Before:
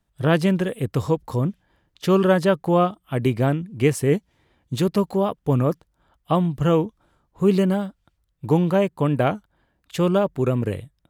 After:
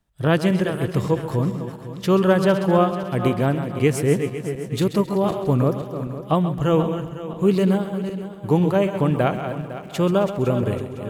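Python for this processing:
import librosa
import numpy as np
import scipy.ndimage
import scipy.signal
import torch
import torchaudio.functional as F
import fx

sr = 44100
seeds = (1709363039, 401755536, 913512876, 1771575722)

p1 = fx.reverse_delay_fb(x, sr, ms=253, feedback_pct=60, wet_db=-9.5)
p2 = fx.dmg_crackle(p1, sr, seeds[0], per_s=210.0, level_db=-45.0, at=(8.93, 10.48), fade=0.02)
y = p2 + fx.echo_feedback(p2, sr, ms=133, feedback_pct=45, wet_db=-12, dry=0)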